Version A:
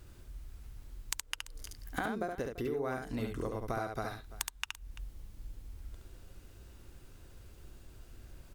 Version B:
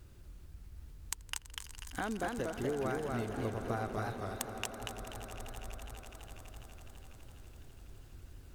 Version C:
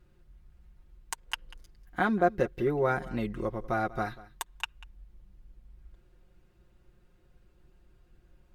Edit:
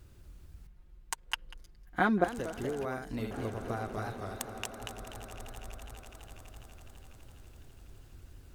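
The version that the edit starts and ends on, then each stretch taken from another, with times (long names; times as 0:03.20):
B
0:00.67–0:02.24: punch in from C
0:02.85–0:03.31: punch in from A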